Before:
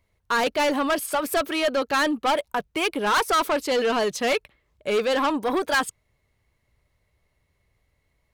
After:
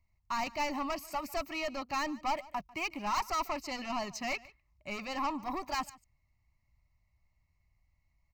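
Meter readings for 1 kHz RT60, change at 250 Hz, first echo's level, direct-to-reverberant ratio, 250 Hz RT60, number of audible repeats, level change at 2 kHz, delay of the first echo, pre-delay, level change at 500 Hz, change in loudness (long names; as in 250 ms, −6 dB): no reverb audible, −12.5 dB, −21.5 dB, no reverb audible, no reverb audible, 1, −13.0 dB, 146 ms, no reverb audible, −17.0 dB, −12.0 dB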